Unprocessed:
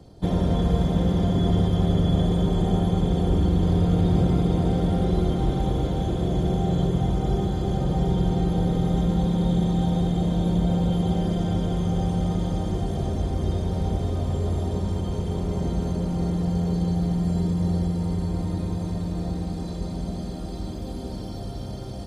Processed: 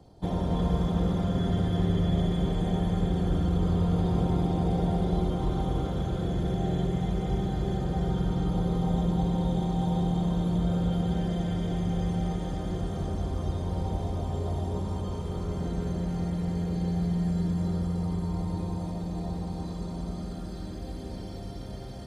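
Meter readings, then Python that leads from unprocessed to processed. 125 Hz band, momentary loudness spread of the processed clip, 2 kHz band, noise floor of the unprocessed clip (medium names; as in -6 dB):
-5.0 dB, 9 LU, -2.5 dB, -33 dBFS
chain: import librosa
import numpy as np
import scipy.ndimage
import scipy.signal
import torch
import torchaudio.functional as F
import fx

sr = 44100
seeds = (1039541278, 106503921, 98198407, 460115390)

p1 = x + fx.echo_single(x, sr, ms=289, db=-6.0, dry=0)
p2 = fx.bell_lfo(p1, sr, hz=0.21, low_hz=850.0, high_hz=2000.0, db=6)
y = p2 * 10.0 ** (-6.5 / 20.0)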